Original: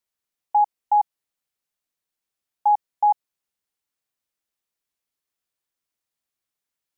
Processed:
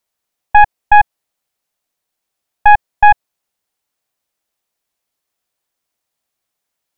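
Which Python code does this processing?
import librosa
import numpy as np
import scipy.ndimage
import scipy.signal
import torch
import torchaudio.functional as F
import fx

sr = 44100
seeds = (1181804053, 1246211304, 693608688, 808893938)

y = fx.tracing_dist(x, sr, depth_ms=0.23)
y = fx.peak_eq(y, sr, hz=690.0, db=5.0, octaves=0.9)
y = y * librosa.db_to_amplitude(8.0)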